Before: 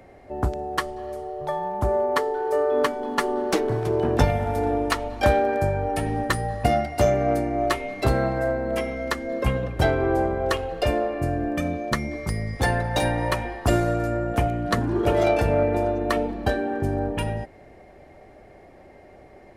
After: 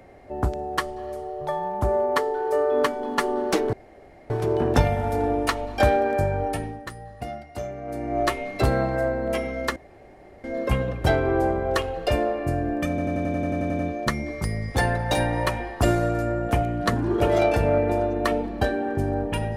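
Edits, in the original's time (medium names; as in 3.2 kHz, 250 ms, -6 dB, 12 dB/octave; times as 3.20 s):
3.73 s: insert room tone 0.57 s
5.88–7.63 s: dip -13 dB, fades 0.33 s
9.19 s: insert room tone 0.68 s
11.64 s: stutter 0.09 s, 11 plays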